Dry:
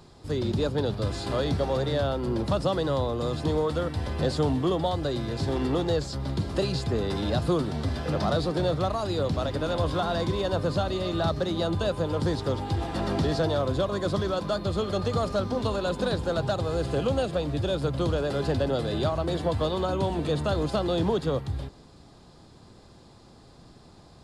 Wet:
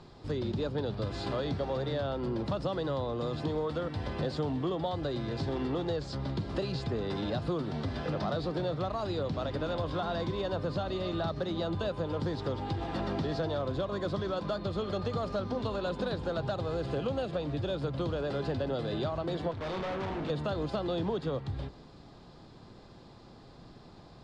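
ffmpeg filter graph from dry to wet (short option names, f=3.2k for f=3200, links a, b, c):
-filter_complex "[0:a]asettb=1/sr,asplit=3[a][b][c];[a]atrim=end=19.514[d];[b]atrim=start=19.51:end=20.3,asetpts=PTS-STARTPTS,afade=t=in:d=0.004:c=qsin,afade=t=out:st=0.786:d=0.004:c=qsin,highshelf=f=6.7k:g=-11,asplit=2[e][f];[f]adelay=31,volume=-6dB[g];[e][g]amix=inputs=2:normalize=0,atrim=end_sample=34839,asoftclip=type=hard:threshold=-32dB[h];[c]atrim=start=20.296[i];[d][h]acrossfade=d=0.004:c1=hsin:c2=qsin[j];[j][i]acrossfade=d=0.004:c1=qsin:c2=hsin,lowpass=4.6k,equalizer=f=75:t=o:w=0.26:g=-11,acompressor=threshold=-32dB:ratio=2.5"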